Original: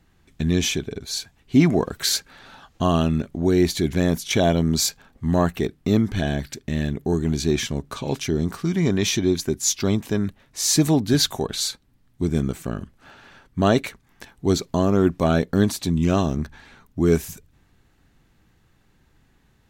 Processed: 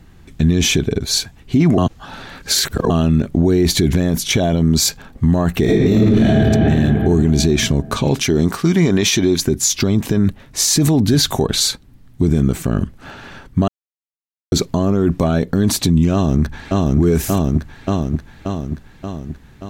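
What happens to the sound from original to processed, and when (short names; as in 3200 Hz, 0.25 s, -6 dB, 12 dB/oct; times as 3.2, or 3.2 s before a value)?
1.78–2.9 reverse
5.62–6.33 reverb throw, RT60 2.6 s, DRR -7 dB
8.22–9.41 low shelf 240 Hz -10 dB
13.68–14.52 mute
16.13–16.99 echo throw 0.58 s, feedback 60%, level -3 dB
whole clip: low shelf 410 Hz +6 dB; maximiser +15.5 dB; gain -5 dB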